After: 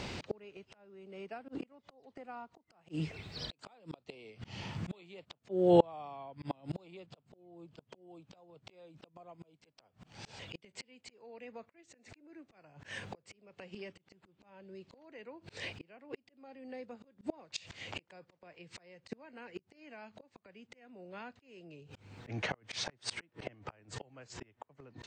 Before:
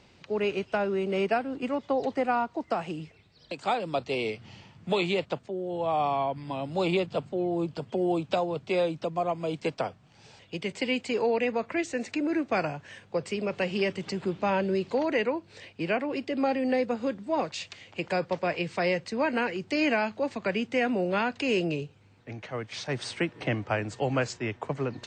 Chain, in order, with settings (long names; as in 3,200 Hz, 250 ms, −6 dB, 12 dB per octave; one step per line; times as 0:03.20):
gate with flip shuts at −24 dBFS, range −35 dB
volume swells 480 ms
level +16 dB